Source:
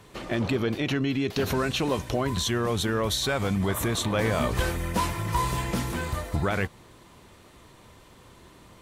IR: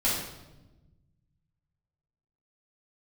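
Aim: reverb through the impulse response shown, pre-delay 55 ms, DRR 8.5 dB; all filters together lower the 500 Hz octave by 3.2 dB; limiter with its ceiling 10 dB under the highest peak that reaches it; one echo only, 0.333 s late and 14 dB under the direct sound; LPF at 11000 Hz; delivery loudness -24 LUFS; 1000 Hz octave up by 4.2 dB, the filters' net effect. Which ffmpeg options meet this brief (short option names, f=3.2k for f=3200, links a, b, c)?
-filter_complex "[0:a]lowpass=11k,equalizer=f=500:t=o:g=-5.5,equalizer=f=1k:t=o:g=6,alimiter=limit=-22dB:level=0:latency=1,aecho=1:1:333:0.2,asplit=2[a][b];[1:a]atrim=start_sample=2205,adelay=55[c];[b][c]afir=irnorm=-1:irlink=0,volume=-19dB[d];[a][d]amix=inputs=2:normalize=0,volume=6dB"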